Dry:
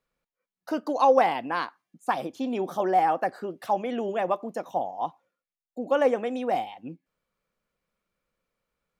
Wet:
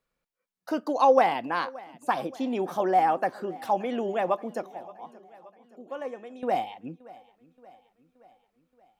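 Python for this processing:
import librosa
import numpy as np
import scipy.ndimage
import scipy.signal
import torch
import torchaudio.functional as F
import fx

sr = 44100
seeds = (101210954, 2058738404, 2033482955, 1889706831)

y = fx.comb_fb(x, sr, f0_hz=360.0, decay_s=0.47, harmonics='odd', damping=0.0, mix_pct=80, at=(4.66, 6.43))
y = fx.echo_feedback(y, sr, ms=575, feedback_pct=57, wet_db=-21.0)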